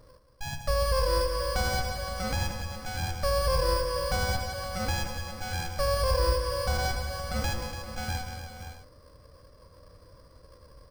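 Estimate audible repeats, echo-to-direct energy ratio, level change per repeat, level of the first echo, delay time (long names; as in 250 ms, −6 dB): 6, −4.0 dB, repeats not evenly spaced, −11.5 dB, 77 ms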